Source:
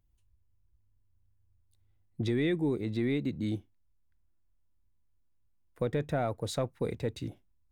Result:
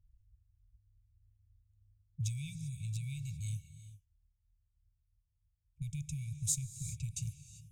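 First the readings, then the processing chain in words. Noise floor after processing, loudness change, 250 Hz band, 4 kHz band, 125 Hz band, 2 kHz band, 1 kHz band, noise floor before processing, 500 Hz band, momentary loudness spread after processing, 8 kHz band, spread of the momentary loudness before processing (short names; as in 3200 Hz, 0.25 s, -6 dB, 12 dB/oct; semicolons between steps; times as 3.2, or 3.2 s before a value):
-79 dBFS, -6.5 dB, -17.0 dB, -7.0 dB, -2.0 dB, -15.0 dB, under -40 dB, -69 dBFS, under -40 dB, 19 LU, n/a, 9 LU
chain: resonant high shelf 5300 Hz +9.5 dB, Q 3; compressor 2:1, threshold -37 dBFS, peak gain reduction 7 dB; passive tone stack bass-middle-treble 6-0-2; low-pass opened by the level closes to 650 Hz, open at -52 dBFS; brick-wall FIR band-stop 170–2200 Hz; non-linear reverb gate 0.42 s rising, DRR 11.5 dB; gain +18 dB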